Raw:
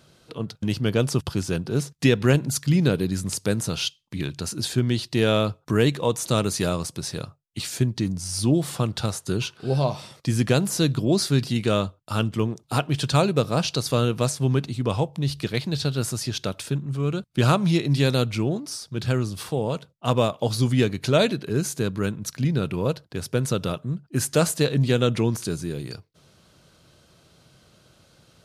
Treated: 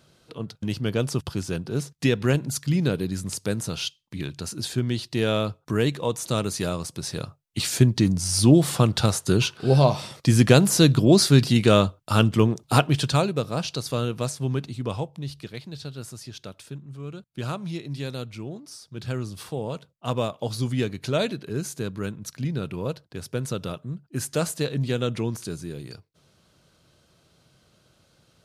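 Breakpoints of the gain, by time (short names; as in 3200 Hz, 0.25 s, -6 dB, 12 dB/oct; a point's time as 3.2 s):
6.82 s -3 dB
7.69 s +5 dB
12.79 s +5 dB
13.34 s -4.5 dB
14.88 s -4.5 dB
15.58 s -11.5 dB
18.42 s -11.5 dB
19.31 s -5 dB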